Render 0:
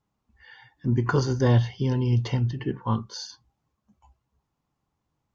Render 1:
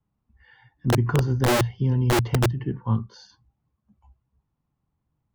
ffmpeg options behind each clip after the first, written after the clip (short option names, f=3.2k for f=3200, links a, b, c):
-filter_complex "[0:a]bass=f=250:g=9,treble=f=4k:g=-12,acrossover=split=220|660|1600[a][b][c][d];[a]aeval=exprs='(mod(3.55*val(0)+1,2)-1)/3.55':c=same[e];[e][b][c][d]amix=inputs=4:normalize=0,volume=-4.5dB"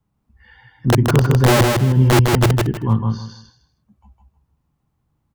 -af "aecho=1:1:157|314|471:0.668|0.16|0.0385,volume=6dB"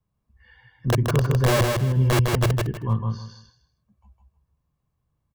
-af "aecho=1:1:1.8:0.4,volume=-7dB"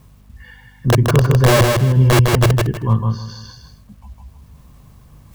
-af "areverse,acompressor=mode=upward:threshold=-35dB:ratio=2.5,areverse,aeval=exprs='val(0)+0.002*(sin(2*PI*50*n/s)+sin(2*PI*2*50*n/s)/2+sin(2*PI*3*50*n/s)/3+sin(2*PI*4*50*n/s)/4+sin(2*PI*5*50*n/s)/5)':c=same,acrusher=bits=10:mix=0:aa=0.000001,volume=7.5dB"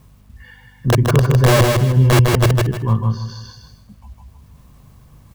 -af "aecho=1:1:149|298|447:0.178|0.0605|0.0206,volume=-1dB"